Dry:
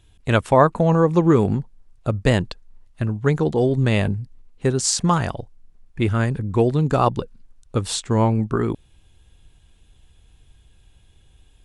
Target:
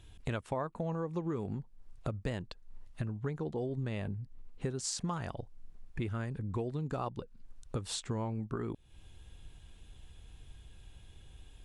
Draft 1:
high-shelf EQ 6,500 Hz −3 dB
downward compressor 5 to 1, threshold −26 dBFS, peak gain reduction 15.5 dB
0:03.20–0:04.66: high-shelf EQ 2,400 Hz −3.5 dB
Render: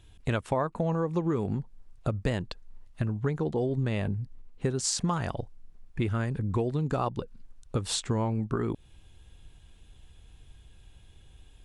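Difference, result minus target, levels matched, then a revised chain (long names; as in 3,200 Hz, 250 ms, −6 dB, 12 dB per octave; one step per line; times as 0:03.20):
downward compressor: peak gain reduction −7.5 dB
high-shelf EQ 6,500 Hz −3 dB
downward compressor 5 to 1, threshold −35.5 dBFS, peak gain reduction 23 dB
0:03.20–0:04.66: high-shelf EQ 2,400 Hz −3.5 dB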